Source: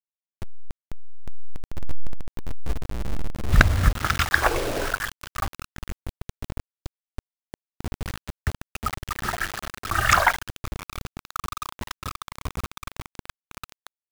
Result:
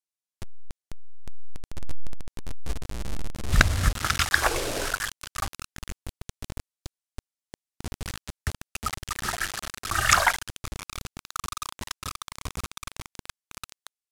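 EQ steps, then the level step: LPF 11000 Hz 12 dB/oct; high shelf 3500 Hz +11 dB; -4.0 dB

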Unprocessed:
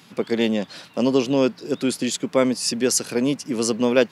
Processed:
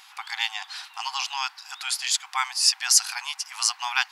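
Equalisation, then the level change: dynamic EQ 4900 Hz, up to +4 dB, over -42 dBFS, Q 2.9; brick-wall FIR high-pass 730 Hz; +2.5 dB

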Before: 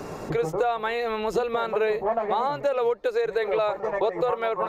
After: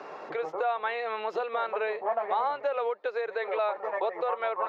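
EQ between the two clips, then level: HPF 640 Hz 12 dB/oct; air absorption 260 m; 0.0 dB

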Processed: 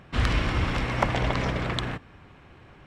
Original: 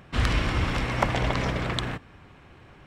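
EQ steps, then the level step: high shelf 8100 Hz -6.5 dB; 0.0 dB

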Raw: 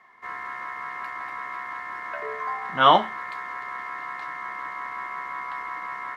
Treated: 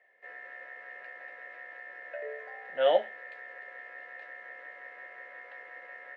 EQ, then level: vowel filter e; bell 690 Hz +7 dB 1.3 oct; high shelf 3900 Hz +6.5 dB; 0.0 dB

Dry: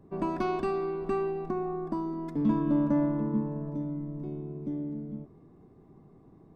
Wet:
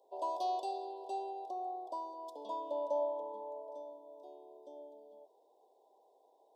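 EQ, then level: elliptic high-pass 530 Hz, stop band 80 dB; elliptic band-stop 1000–3300 Hz, stop band 40 dB; Butterworth band-stop 1200 Hz, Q 2.3; +3.0 dB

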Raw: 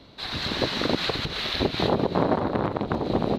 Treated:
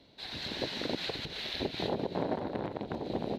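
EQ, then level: low shelf 150 Hz -6.5 dB; bell 1200 Hz -10.5 dB 0.46 oct; -8.5 dB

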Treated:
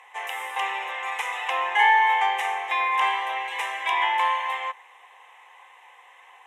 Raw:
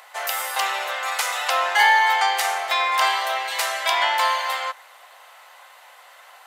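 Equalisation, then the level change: dynamic EQ 6300 Hz, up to -4 dB, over -36 dBFS, Q 0.88; air absorption 75 m; fixed phaser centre 930 Hz, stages 8; 0.0 dB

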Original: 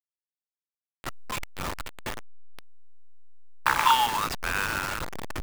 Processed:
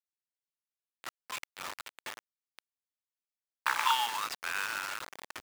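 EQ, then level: HPF 1300 Hz 6 dB/oct; high shelf 10000 Hz -4.5 dB; -3.5 dB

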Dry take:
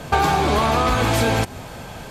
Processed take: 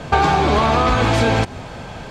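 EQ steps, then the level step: air absorption 110 m; high shelf 7600 Hz +6.5 dB; +3.0 dB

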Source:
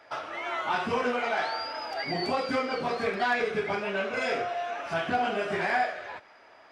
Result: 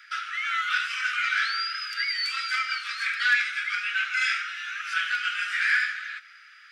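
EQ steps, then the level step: steep high-pass 1300 Hz 96 dB/oct; +8.0 dB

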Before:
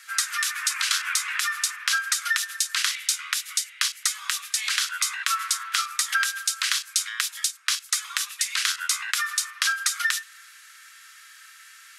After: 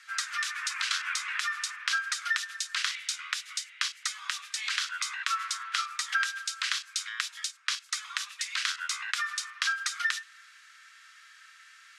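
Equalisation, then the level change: air absorption 79 m; -3.5 dB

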